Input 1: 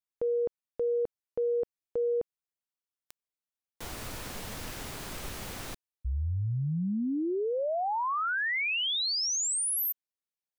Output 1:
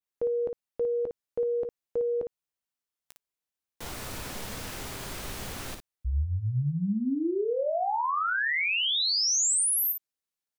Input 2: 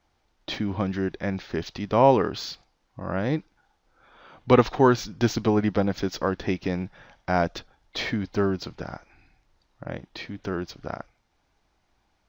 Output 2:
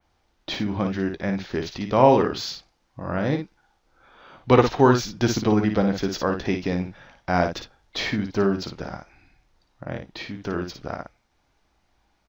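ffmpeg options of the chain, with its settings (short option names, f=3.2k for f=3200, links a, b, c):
-af "adynamicequalizer=threshold=0.00631:dfrequency=7600:dqfactor=0.76:tfrequency=7600:tqfactor=0.76:attack=5:release=100:ratio=0.375:range=1.5:mode=boostabove:tftype=bell,aecho=1:1:15|56:0.237|0.473,volume=1dB"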